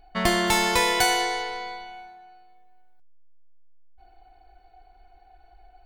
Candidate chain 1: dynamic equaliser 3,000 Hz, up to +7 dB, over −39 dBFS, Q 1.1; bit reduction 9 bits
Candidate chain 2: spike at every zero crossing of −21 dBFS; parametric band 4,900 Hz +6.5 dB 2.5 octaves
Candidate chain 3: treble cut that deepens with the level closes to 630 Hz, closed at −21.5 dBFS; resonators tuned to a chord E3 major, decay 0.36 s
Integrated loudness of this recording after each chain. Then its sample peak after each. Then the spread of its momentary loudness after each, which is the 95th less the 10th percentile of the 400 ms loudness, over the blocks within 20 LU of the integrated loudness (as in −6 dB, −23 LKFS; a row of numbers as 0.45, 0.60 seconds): −19.0, −20.5, −41.0 LKFS; −4.5, −2.5, −28.0 dBFS; 15, 17, 17 LU